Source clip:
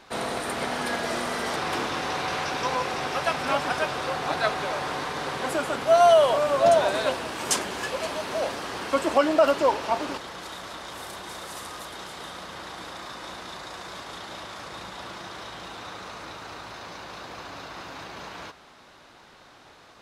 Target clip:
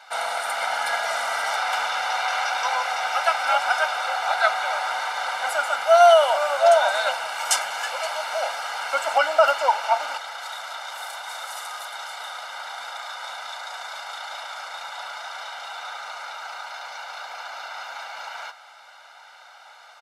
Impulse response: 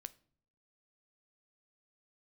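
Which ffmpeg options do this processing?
-af "highpass=frequency=970:width_type=q:width=1.7,aecho=1:1:1.4:0.95"

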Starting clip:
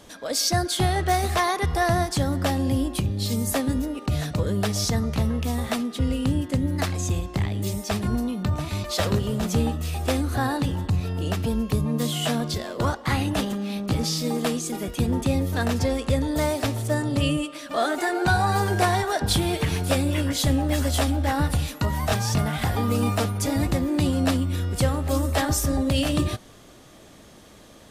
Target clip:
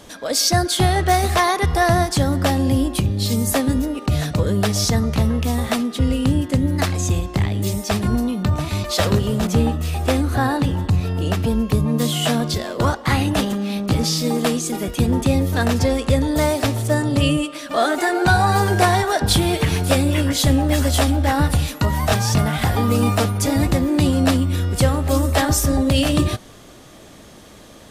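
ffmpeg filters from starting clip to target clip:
ffmpeg -i in.wav -filter_complex "[0:a]asettb=1/sr,asplit=3[link_01][link_02][link_03];[link_01]atrim=end=9.474[link_04];[link_02]atrim=start=9.47:end=11.88,asetpts=PTS-STARTPTS,afade=type=in:duration=0.004:curve=qsin,afade=type=out:start_time=2.406:duration=0.004:curve=qsin,adynamicequalizer=threshold=0.00631:dfrequency=3200:dqfactor=0.7:tfrequency=3200:tqfactor=0.7:attack=5:release=100:ratio=0.375:range=2:mode=cutabove:tftype=highshelf[link_05];[link_03]atrim=start=11.876[link_06];[link_04][link_05]acrossfade=duration=0.004:curve1=hsin:curve2=qsin[link_07];[link_07][link_06]acrossfade=duration=0.004:curve1=qsin:curve2=hsin,volume=5.5dB" out.wav

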